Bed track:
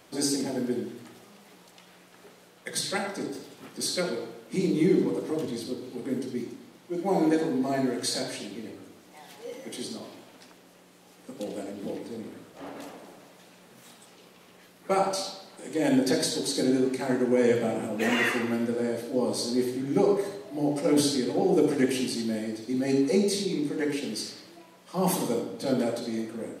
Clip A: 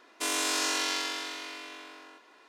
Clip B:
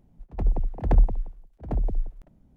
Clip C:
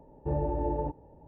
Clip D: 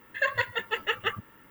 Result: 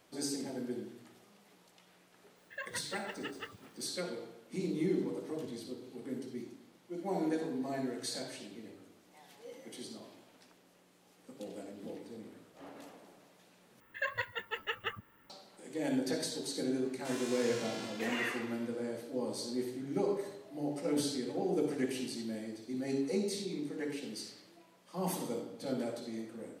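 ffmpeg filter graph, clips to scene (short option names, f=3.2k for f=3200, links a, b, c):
-filter_complex "[4:a]asplit=2[a][b];[0:a]volume=-10dB[c];[1:a]flanger=delay=15:depth=2.1:speed=1.1[d];[c]asplit=2[e][f];[e]atrim=end=13.804[g];[b]atrim=end=1.5,asetpts=PTS-STARTPTS,volume=-9dB[h];[f]atrim=start=15.296[i];[a]atrim=end=1.5,asetpts=PTS-STARTPTS,volume=-16.5dB,afade=t=in:d=0.004:c=hsin,afade=t=out:st=1.496:d=0.004:c=hsin,adelay=2360[j];[d]atrim=end=2.48,asetpts=PTS-STARTPTS,volume=-12dB,afade=t=in:d=0.004:c=hsin,afade=t=out:st=2.476:d=0.004:c=hsin,adelay=742644S[k];[g][h]acrossfade=d=0.004:c1=hsin:c2=hsin[l];[l][i]acrossfade=d=0.004:c1=hsin:c2=hsin[m];[m][j][k]amix=inputs=3:normalize=0"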